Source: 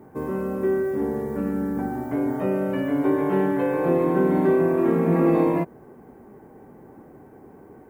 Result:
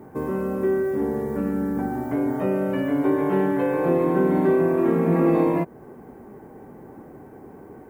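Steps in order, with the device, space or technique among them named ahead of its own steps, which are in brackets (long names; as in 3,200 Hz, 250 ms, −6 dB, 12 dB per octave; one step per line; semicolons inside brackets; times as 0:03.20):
parallel compression (in parallel at −3 dB: downward compressor, threshold −32 dBFS, peak gain reduction 16 dB)
on the sum: level −1 dB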